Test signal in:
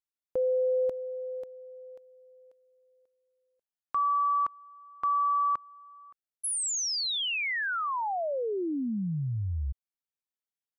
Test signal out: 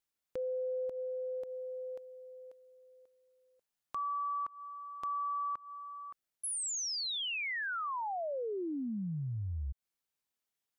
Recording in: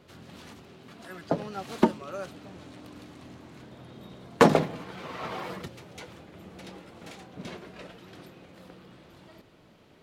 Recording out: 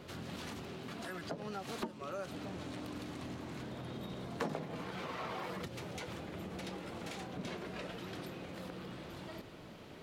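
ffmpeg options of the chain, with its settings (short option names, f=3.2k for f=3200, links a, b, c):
-af "acompressor=threshold=-43dB:ratio=4:attack=0.86:release=128:detection=rms,volume=5.5dB"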